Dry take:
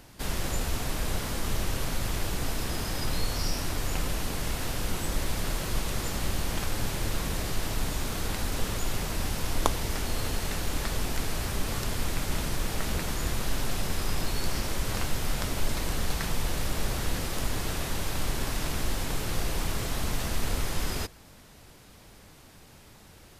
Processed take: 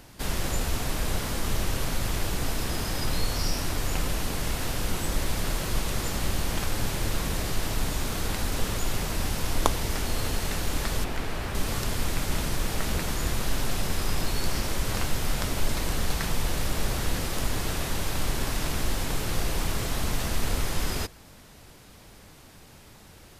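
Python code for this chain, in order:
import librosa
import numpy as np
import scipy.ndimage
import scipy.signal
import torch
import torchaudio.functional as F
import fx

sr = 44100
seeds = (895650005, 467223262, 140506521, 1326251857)

y = fx.bass_treble(x, sr, bass_db=-3, treble_db=-10, at=(11.04, 11.55))
y = y * librosa.db_to_amplitude(2.0)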